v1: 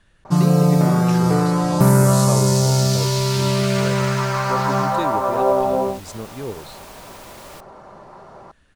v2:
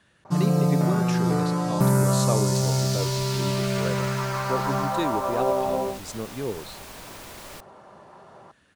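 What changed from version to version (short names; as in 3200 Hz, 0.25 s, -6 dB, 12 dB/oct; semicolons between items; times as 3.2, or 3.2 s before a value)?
speech: add HPF 120 Hz; first sound -6.5 dB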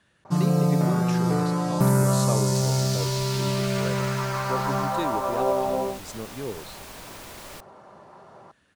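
speech -3.0 dB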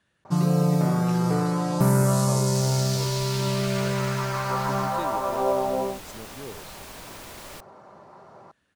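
speech -6.5 dB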